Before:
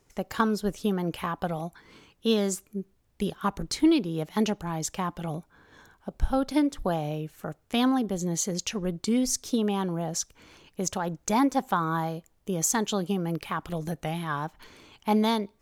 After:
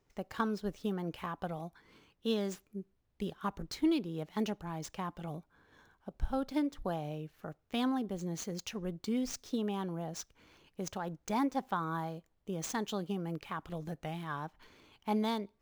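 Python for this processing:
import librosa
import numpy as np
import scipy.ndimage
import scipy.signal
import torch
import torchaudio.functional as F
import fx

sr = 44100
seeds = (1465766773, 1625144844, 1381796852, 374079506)

y = scipy.ndimage.median_filter(x, 5, mode='constant')
y = F.gain(torch.from_numpy(y), -8.5).numpy()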